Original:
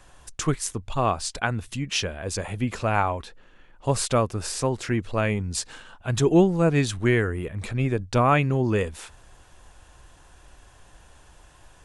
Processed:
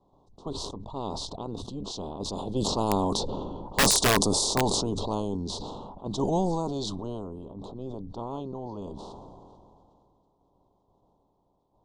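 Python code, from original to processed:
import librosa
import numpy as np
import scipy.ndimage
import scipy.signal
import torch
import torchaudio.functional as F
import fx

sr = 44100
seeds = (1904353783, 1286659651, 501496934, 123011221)

y = fx.spec_clip(x, sr, under_db=20)
y = fx.doppler_pass(y, sr, speed_mps=9, closest_m=4.2, pass_at_s=3.68)
y = scipy.signal.sosfilt(scipy.signal.ellip(3, 1.0, 60, [980.0, 3800.0], 'bandstop', fs=sr, output='sos'), y)
y = fx.env_lowpass(y, sr, base_hz=1500.0, full_db=-29.5)
y = scipy.signal.sosfilt(scipy.signal.butter(4, 9100.0, 'lowpass', fs=sr, output='sos'), y)
y = fx.small_body(y, sr, hz=(200.0, 280.0, 400.0), ring_ms=90, db=6)
y = (np.mod(10.0 ** (20.0 / 20.0) * y + 1.0, 2.0) - 1.0) / 10.0 ** (20.0 / 20.0)
y = fx.sustainer(y, sr, db_per_s=22.0)
y = F.gain(torch.from_numpy(y), 5.5).numpy()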